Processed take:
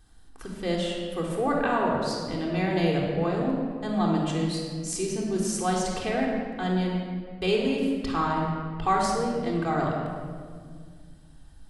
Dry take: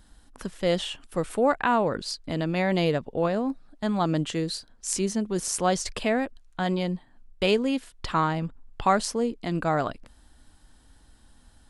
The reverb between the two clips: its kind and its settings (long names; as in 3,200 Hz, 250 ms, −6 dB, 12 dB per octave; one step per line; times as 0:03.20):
rectangular room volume 3,000 cubic metres, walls mixed, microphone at 3.7 metres
level −6.5 dB